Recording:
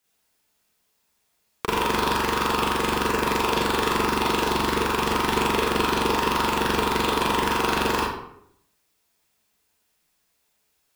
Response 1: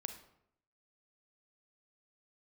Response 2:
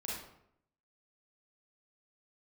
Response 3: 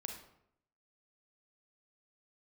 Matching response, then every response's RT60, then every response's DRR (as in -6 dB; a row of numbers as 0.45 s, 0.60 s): 2; 0.75 s, 0.75 s, 0.75 s; 7.5 dB, -5.5 dB, 3.0 dB